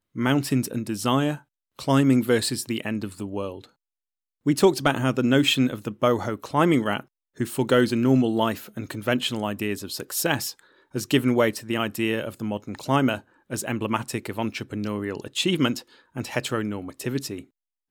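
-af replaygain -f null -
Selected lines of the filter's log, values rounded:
track_gain = +3.2 dB
track_peak = 0.337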